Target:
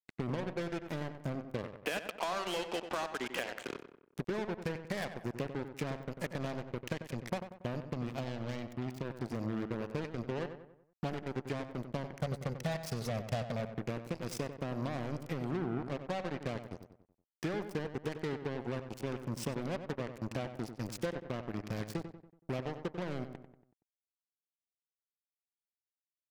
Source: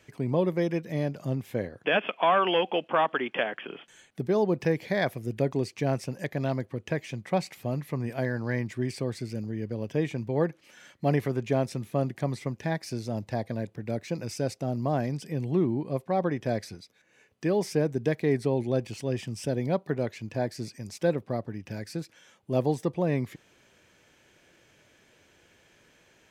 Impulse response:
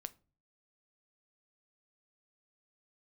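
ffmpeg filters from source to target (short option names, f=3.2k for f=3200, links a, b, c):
-filter_complex "[0:a]acompressor=threshold=-33dB:ratio=20,asettb=1/sr,asplit=3[a][b][c];[a]atrim=end=12.214[d];[b]atrim=start=12.21:end=13.73,asetpts=PTS-STARTPTS,afade=t=in:d=0.004:c=qsin,afade=t=out:st=1.516:d=0.004:c=qsin,aecho=1:1:1.5:0.74,atrim=end_sample=67032[e];[c]atrim=start=13.726[f];[d][e]acrossfade=d=0.004:c1=hsin:c2=qsin[g];[g][f]acrossfade=d=0.004:c1=qsin:c2=hsin,acrusher=bits=5:mix=0:aa=0.5,asettb=1/sr,asplit=3[h][i][j];[h]atrim=end=7.934[k];[i]atrim=start=7.93:end=9.05,asetpts=PTS-STARTPTS,afade=t=in:d=0.004:c=qsin,afade=t=out:st=1.116:d=0.004:c=qsin,equalizer=f=400:t=o:w=0.67:g=-4,equalizer=f=1.6k:t=o:w=0.67:g=-7,equalizer=f=10k:t=o:w=0.67:g=-7[l];[j]atrim=start=9.046[m];[k][l]acrossfade=d=0.004:c1=hsin:c2=qsin[n];[n][m]acrossfade=d=0.004:c1=qsin:c2=hsin,asplit=2[o][p];[p]adelay=94,lowpass=f=2.5k:p=1,volume=-9dB,asplit=2[q][r];[r]adelay=94,lowpass=f=2.5k:p=1,volume=0.47,asplit=2[s][t];[t]adelay=94,lowpass=f=2.5k:p=1,volume=0.47,asplit=2[u][v];[v]adelay=94,lowpass=f=2.5k:p=1,volume=0.47,asplit=2[w][x];[x]adelay=94,lowpass=f=2.5k:p=1,volume=0.47[y];[o][q][s][u][w][y]amix=inputs=6:normalize=0"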